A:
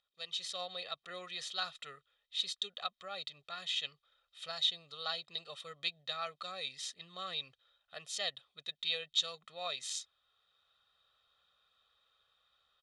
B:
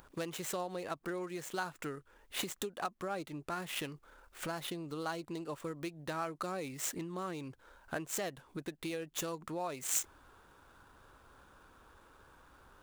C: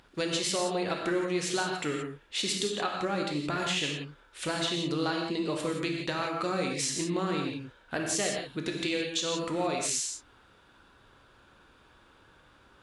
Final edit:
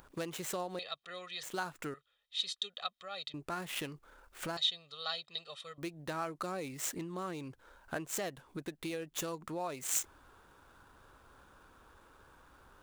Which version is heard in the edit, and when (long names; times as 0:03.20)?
B
0:00.79–0:01.43: punch in from A
0:01.94–0:03.34: punch in from A
0:04.57–0:05.78: punch in from A
not used: C